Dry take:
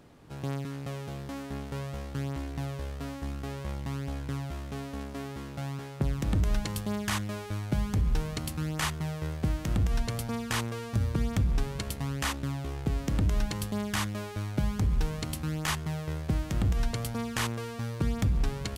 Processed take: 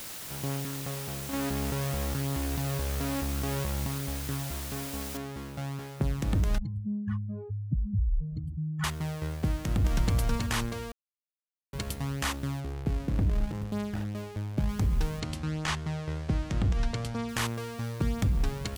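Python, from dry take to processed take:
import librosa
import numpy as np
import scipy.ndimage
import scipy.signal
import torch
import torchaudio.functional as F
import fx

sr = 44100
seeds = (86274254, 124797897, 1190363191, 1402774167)

y = fx.env_flatten(x, sr, amount_pct=100, at=(1.33, 3.87))
y = fx.noise_floor_step(y, sr, seeds[0], at_s=5.17, before_db=-41, after_db=-58, tilt_db=0.0)
y = fx.spec_expand(y, sr, power=3.3, at=(6.58, 8.84))
y = fx.echo_throw(y, sr, start_s=9.52, length_s=0.62, ms=320, feedback_pct=35, wet_db=-1.0)
y = fx.median_filter(y, sr, points=41, at=(12.6, 14.69))
y = fx.lowpass(y, sr, hz=6600.0, slope=12, at=(15.2, 17.29))
y = fx.edit(y, sr, fx.silence(start_s=10.92, length_s=0.81), tone=tone)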